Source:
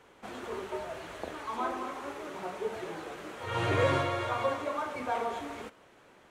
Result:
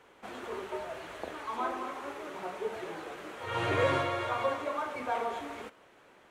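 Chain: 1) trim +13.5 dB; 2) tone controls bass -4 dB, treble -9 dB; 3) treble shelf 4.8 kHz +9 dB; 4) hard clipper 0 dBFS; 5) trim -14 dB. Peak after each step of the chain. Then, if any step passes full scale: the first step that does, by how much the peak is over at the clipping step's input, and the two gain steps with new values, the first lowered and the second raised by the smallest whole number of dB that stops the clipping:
-1.5 dBFS, -2.0 dBFS, -2.0 dBFS, -2.0 dBFS, -16.0 dBFS; nothing clips

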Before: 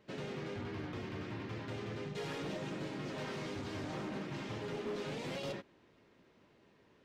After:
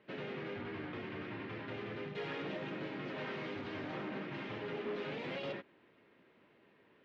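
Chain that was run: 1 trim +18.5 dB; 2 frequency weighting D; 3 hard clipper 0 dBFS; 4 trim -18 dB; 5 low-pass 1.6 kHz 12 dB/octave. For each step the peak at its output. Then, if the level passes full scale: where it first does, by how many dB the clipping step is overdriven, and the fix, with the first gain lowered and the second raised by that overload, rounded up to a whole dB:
-16.0 dBFS, -5.5 dBFS, -5.5 dBFS, -23.5 dBFS, -29.0 dBFS; nothing clips

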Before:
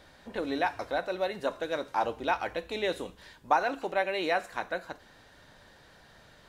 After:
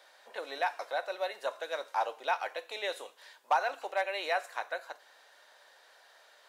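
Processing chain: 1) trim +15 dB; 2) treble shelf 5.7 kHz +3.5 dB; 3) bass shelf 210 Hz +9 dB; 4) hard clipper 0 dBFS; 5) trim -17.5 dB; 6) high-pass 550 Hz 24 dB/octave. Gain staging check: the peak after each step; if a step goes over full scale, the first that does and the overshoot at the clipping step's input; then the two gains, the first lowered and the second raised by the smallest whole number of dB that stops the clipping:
+5.0 dBFS, +5.5 dBFS, +5.5 dBFS, 0.0 dBFS, -17.5 dBFS, -15.5 dBFS; step 1, 5.5 dB; step 1 +9 dB, step 5 -11.5 dB

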